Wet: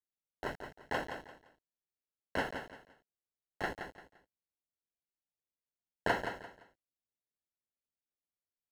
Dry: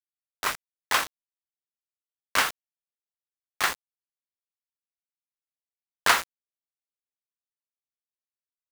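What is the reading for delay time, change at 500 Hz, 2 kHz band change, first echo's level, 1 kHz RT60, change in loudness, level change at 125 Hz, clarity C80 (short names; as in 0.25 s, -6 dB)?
0.172 s, -0.5 dB, -12.0 dB, -8.0 dB, none, -13.0 dB, +3.0 dB, none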